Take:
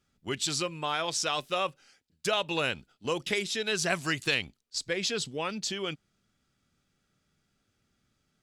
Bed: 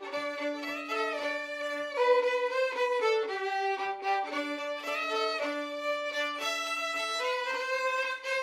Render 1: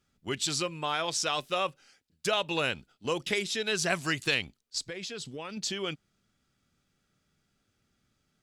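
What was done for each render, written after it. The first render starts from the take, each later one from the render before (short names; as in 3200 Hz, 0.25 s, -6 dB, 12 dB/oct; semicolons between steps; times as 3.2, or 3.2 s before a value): 4.87–5.57 compressor 4:1, threshold -36 dBFS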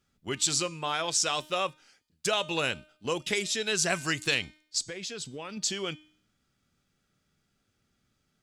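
de-hum 306.3 Hz, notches 33; dynamic EQ 7400 Hz, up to +7 dB, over -47 dBFS, Q 1.3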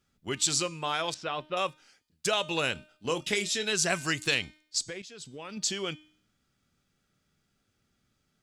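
1.14–1.57 air absorption 410 m; 2.73–3.73 doubler 24 ms -10.5 dB; 5.02–5.6 fade in, from -13 dB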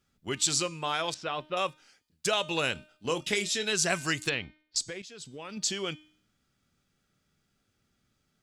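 4.29–4.76 air absorption 330 m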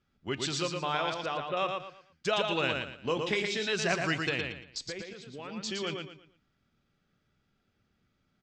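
air absorption 160 m; feedback echo 0.115 s, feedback 30%, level -4.5 dB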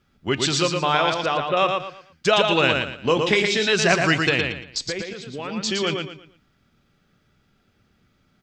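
gain +11 dB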